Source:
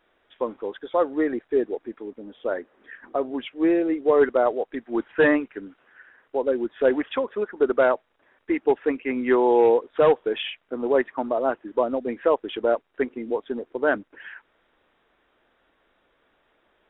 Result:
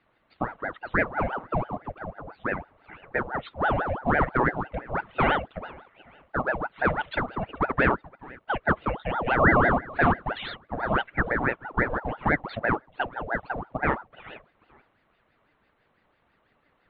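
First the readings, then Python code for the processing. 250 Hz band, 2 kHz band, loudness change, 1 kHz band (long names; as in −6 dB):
−5.0 dB, +5.0 dB, −3.0 dB, +3.0 dB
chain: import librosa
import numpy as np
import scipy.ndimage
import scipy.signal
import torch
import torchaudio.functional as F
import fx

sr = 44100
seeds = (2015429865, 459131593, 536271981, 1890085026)

p1 = fx.high_shelf(x, sr, hz=2100.0, db=-11.5)
p2 = fx.small_body(p1, sr, hz=(870.0, 2500.0), ring_ms=45, db=12)
p3 = fx.dynamic_eq(p2, sr, hz=400.0, q=1.5, threshold_db=-28.0, ratio=4.0, max_db=-5)
p4 = p3 + fx.echo_feedback(p3, sr, ms=434, feedback_pct=29, wet_db=-22, dry=0)
p5 = fx.ring_lfo(p4, sr, carrier_hz=700.0, swing_pct=70, hz=6.0)
y = p5 * 10.0 ** (2.0 / 20.0)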